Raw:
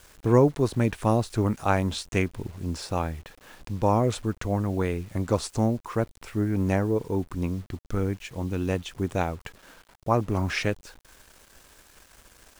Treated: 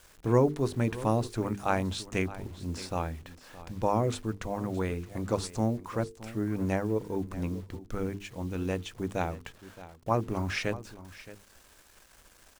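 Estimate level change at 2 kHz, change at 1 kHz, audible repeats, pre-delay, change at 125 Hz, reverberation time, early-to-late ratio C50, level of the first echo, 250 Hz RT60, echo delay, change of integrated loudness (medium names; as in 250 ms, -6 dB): -4.0 dB, -4.0 dB, 1, no reverb, -5.5 dB, no reverb, no reverb, -16.5 dB, no reverb, 620 ms, -4.5 dB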